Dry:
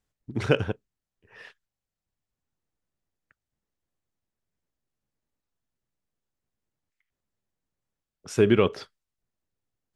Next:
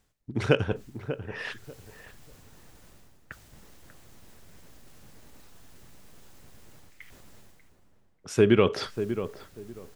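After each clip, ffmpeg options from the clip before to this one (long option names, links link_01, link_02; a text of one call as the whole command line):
ffmpeg -i in.wav -filter_complex "[0:a]areverse,acompressor=mode=upward:threshold=-25dB:ratio=2.5,areverse,asplit=2[link_01][link_02];[link_02]adelay=591,lowpass=frequency=1200:poles=1,volume=-10dB,asplit=2[link_03][link_04];[link_04]adelay=591,lowpass=frequency=1200:poles=1,volume=0.23,asplit=2[link_05][link_06];[link_06]adelay=591,lowpass=frequency=1200:poles=1,volume=0.23[link_07];[link_01][link_03][link_05][link_07]amix=inputs=4:normalize=0" out.wav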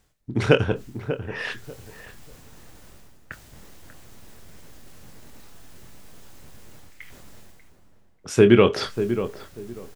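ffmpeg -i in.wav -filter_complex "[0:a]asplit=2[link_01][link_02];[link_02]adelay=25,volume=-10dB[link_03];[link_01][link_03]amix=inputs=2:normalize=0,volume=5dB" out.wav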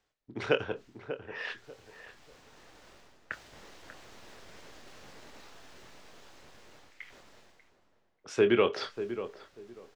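ffmpeg -i in.wav -filter_complex "[0:a]acrossover=split=320 6200:gain=0.224 1 0.126[link_01][link_02][link_03];[link_01][link_02][link_03]amix=inputs=3:normalize=0,dynaudnorm=framelen=280:gausssize=17:maxgain=10.5dB,volume=-8dB" out.wav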